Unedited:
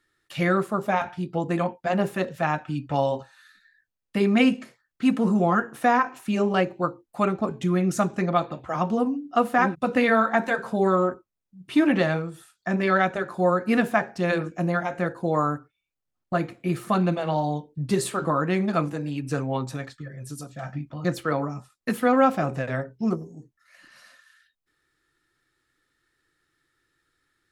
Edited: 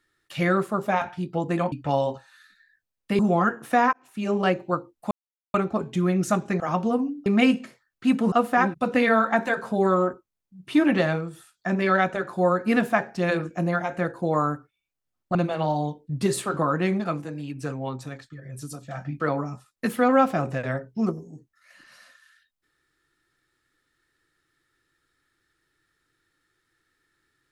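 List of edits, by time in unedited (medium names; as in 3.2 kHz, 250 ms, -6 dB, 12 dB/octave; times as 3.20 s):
1.72–2.77 s: delete
4.24–5.30 s: move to 9.33 s
6.04–6.51 s: fade in
7.22 s: insert silence 0.43 s
8.28–8.67 s: delete
16.36–17.03 s: delete
18.68–20.13 s: gain -4 dB
20.88–21.24 s: delete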